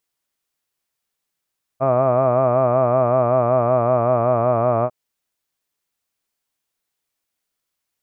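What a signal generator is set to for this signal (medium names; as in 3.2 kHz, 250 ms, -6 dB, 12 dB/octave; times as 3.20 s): formant-synthesis vowel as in hud, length 3.10 s, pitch 129 Hz, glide -1.5 st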